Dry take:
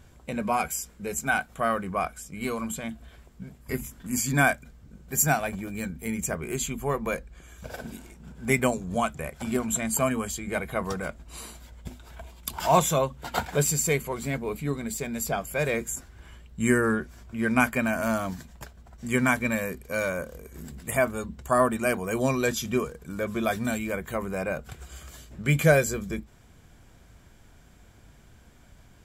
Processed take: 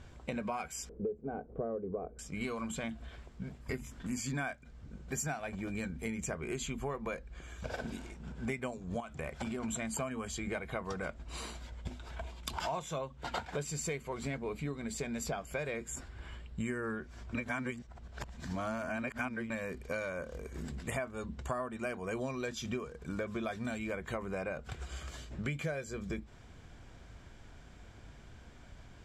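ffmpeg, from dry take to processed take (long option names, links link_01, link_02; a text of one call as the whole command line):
ffmpeg -i in.wav -filter_complex "[0:a]asettb=1/sr,asplit=3[link_01][link_02][link_03];[link_01]atrim=end=0.894[link_04];[link_02]atrim=start=0.89:end=2.19,asetpts=PTS-STARTPTS,afade=type=in:duration=0.004:curve=qsin,afade=type=out:start_time=1.296:duration=0.004:curve=qsin,lowpass=frequency=440:width_type=q:width=5.1[link_05];[link_03]atrim=start=2.186[link_06];[link_04][link_05]acrossfade=duration=0.004:curve1=hsin:curve2=qsin[link_07];[link_07][link_06]acrossfade=duration=0.004:curve1=qsin:curve2=hsin,asettb=1/sr,asplit=3[link_08][link_09][link_10];[link_08]atrim=end=9.004[link_11];[link_09]atrim=start=9:end=9.63,asetpts=PTS-STARTPTS,afade=type=in:duration=0.004:curve=qsin,afade=type=out:start_time=0.626:duration=0.004:curve=qsin,acompressor=threshold=-31dB:ratio=6:attack=3.2:release=140:knee=1:detection=peak[link_12];[link_10]atrim=start=9.626[link_13];[link_11][link_12]acrossfade=duration=0.004:curve1=hsin:curve2=qsin[link_14];[link_14][link_13]acrossfade=duration=0.004:curve1=qsin:curve2=hsin,asettb=1/sr,asplit=3[link_15][link_16][link_17];[link_15]atrim=end=15.604[link_18];[link_16]atrim=start=15.6:end=16.68,asetpts=PTS-STARTPTS,afade=type=in:duration=0.004:curve=qsin,afade=type=out:start_time=1.076:duration=0.004:curve=qsin,bandreject=frequency=6100:width=8[link_19];[link_17]atrim=start=16.676[link_20];[link_18][link_19]acrossfade=duration=0.004:curve1=hsin:curve2=qsin[link_21];[link_21][link_20]acrossfade=duration=0.004:curve1=qsin:curve2=hsin,asplit=3[link_22][link_23][link_24];[link_22]atrim=end=17.352[link_25];[link_23]atrim=start=17.348:end=19.502,asetpts=PTS-STARTPTS,areverse[link_26];[link_24]atrim=start=19.498[link_27];[link_25][link_26]acrossfade=duration=0.004:curve1=hsin:curve2=hsin[link_28];[link_28][link_27]acrossfade=duration=0.004:curve1=hsin:curve2=hsin,lowpass=5800,equalizer=frequency=180:width_type=o:width=0.77:gain=-2.5,acompressor=threshold=-35dB:ratio=10,volume=1dB" out.wav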